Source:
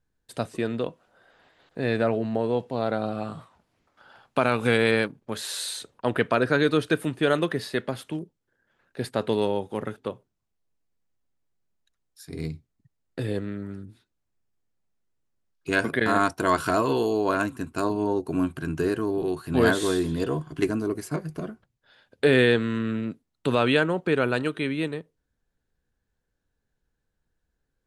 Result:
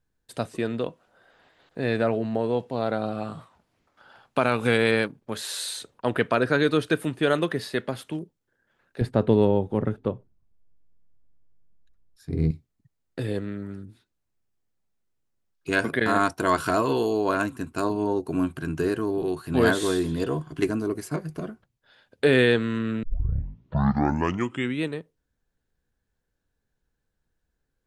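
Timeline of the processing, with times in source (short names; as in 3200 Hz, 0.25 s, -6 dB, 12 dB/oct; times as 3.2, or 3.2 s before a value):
9.01–12.51 tilt -3.5 dB/oct
23.03 tape start 1.80 s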